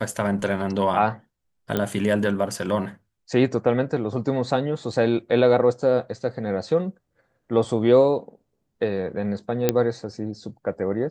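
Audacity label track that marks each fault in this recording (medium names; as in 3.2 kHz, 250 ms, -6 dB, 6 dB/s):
1.770000	1.770000	pop -10 dBFS
9.690000	9.690000	pop -4 dBFS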